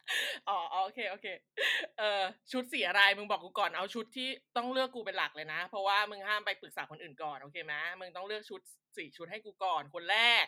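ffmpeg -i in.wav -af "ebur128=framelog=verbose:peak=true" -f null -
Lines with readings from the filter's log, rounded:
Integrated loudness:
  I:         -33.5 LUFS
  Threshold: -44.0 LUFS
Loudness range:
  LRA:         8.4 LU
  Threshold: -54.0 LUFS
  LRA low:   -40.2 LUFS
  LRA high:  -31.7 LUFS
True peak:
  Peak:       -9.7 dBFS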